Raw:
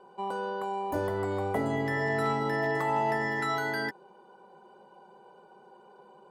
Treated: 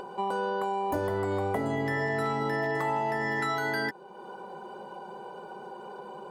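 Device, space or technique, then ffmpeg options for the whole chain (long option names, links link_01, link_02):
upward and downward compression: -af "acompressor=mode=upward:threshold=-40dB:ratio=2.5,acompressor=threshold=-32dB:ratio=6,volume=6dB"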